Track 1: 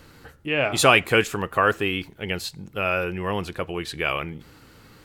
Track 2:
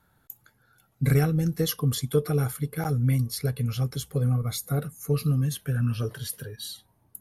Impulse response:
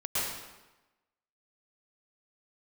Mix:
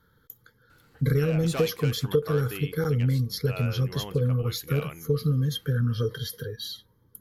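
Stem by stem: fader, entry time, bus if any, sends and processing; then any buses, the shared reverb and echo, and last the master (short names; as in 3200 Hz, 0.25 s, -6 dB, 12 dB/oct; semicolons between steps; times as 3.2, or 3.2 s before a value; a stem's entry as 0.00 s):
-12.5 dB, 0.70 s, no send, hard clip -15 dBFS, distortion -10 dB
+2.5 dB, 0.00 s, no send, fixed phaser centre 2600 Hz, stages 6; small resonant body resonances 480/3200 Hz, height 16 dB, ringing for 50 ms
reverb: off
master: compressor 3:1, threshold -21 dBFS, peak gain reduction 8 dB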